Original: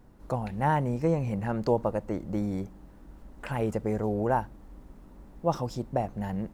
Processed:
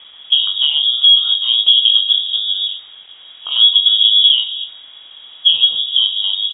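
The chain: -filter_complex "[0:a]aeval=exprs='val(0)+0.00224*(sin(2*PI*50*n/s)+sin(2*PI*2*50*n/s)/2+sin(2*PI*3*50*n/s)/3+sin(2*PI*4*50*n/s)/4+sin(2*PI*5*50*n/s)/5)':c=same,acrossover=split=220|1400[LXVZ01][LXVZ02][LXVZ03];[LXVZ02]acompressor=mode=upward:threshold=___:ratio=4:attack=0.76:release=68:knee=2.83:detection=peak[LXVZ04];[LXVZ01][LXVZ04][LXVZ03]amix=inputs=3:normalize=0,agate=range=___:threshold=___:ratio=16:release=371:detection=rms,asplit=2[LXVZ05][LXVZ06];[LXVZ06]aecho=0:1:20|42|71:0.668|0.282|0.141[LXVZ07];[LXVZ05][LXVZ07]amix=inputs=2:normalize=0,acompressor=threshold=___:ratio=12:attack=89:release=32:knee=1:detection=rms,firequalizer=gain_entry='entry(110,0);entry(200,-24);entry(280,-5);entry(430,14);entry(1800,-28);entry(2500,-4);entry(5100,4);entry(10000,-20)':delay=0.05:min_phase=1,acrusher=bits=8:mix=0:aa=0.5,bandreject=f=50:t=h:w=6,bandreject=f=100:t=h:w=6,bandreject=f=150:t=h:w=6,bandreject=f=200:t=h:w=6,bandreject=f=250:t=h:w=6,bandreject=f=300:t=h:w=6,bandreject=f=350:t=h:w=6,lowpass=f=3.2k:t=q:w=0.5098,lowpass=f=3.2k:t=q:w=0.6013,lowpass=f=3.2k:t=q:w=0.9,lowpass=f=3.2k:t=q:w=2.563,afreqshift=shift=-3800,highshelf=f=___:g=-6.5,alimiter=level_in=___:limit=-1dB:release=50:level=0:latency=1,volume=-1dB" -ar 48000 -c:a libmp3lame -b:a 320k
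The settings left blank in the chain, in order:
-29dB, -16dB, -31dB, -30dB, 2.8k, 15dB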